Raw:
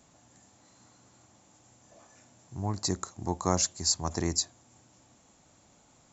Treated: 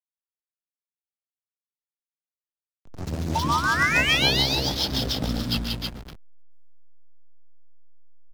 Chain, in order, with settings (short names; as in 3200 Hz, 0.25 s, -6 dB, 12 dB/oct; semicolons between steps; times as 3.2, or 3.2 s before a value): speed glide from 91% -> 56%; non-linear reverb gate 0.37 s rising, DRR 9.5 dB; echoes that change speed 0.191 s, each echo +2 st, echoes 3, each echo -6 dB; in parallel at -10 dB: wrapped overs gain 22 dB; on the sum: painted sound rise, 3.35–4.37, 880–4900 Hz -21 dBFS; on a send: tapped delay 0.126/0.185/0.326/0.556 s -6/-3/-4.5/-12 dB; on the sum: rotary speaker horn 1.1 Hz, later 7 Hz, at 2.74; backlash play -25.5 dBFS; three-band squash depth 40%